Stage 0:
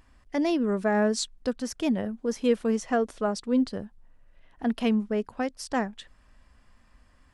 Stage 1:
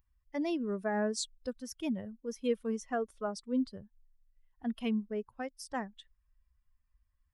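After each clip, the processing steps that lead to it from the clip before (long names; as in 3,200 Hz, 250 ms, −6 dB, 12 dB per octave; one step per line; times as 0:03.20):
spectral dynamics exaggerated over time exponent 1.5
high-shelf EQ 8,800 Hz +6.5 dB
level −6.5 dB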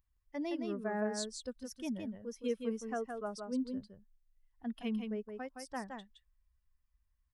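single-tap delay 167 ms −5.5 dB
level −4.5 dB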